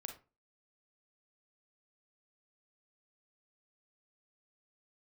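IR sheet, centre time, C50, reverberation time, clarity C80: 15 ms, 8.5 dB, 0.30 s, 16.0 dB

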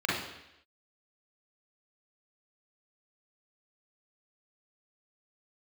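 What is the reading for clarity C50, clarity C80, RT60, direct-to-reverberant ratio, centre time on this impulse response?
0.5 dB, 5.5 dB, 0.85 s, −6.5 dB, 66 ms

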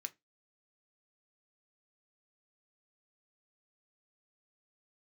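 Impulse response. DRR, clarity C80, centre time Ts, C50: 8.5 dB, 33.5 dB, 3 ms, 24.5 dB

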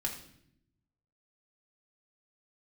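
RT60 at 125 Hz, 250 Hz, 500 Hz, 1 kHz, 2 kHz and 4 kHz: 1.4, 1.2, 0.80, 0.60, 0.65, 0.60 seconds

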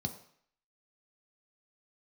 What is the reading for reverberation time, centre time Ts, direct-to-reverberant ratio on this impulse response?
0.60 s, 11 ms, 4.5 dB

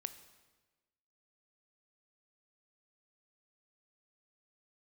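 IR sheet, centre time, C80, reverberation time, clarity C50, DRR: 9 ms, 14.0 dB, 1.3 s, 12.5 dB, 11.0 dB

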